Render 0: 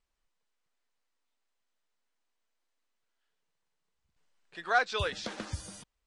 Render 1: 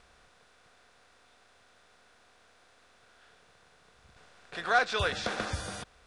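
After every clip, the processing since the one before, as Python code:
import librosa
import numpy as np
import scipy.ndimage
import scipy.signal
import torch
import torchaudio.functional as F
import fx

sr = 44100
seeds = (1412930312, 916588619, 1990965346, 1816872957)

y = fx.bin_compress(x, sr, power=0.6)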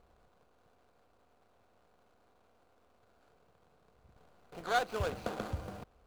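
y = scipy.signal.medfilt(x, 25)
y = F.gain(torch.from_numpy(y), -2.0).numpy()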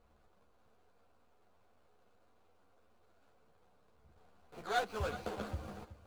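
y = x + 10.0 ** (-14.5 / 20.0) * np.pad(x, (int(373 * sr / 1000.0), 0))[:len(x)]
y = fx.ensemble(y, sr)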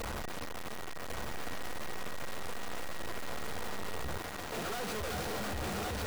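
y = np.sign(x) * np.sqrt(np.mean(np.square(x)))
y = y + 10.0 ** (-64.0 / 20.0) * np.sin(2.0 * np.pi * 1900.0 * np.arange(len(y)) / sr)
y = y + 10.0 ** (-3.5 / 20.0) * np.pad(y, (int(1098 * sr / 1000.0), 0))[:len(y)]
y = F.gain(torch.from_numpy(y), 8.0).numpy()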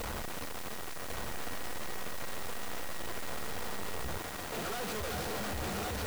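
y = fx.dmg_noise_colour(x, sr, seeds[0], colour='white', level_db=-49.0)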